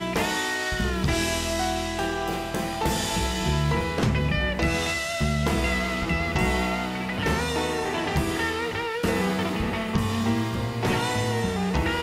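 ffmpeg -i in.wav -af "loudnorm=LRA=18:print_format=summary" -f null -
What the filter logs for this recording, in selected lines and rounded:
Input Integrated:    -25.5 LUFS
Input True Peak:     -12.6 dBTP
Input LRA:             1.2 LU
Input Threshold:     -35.5 LUFS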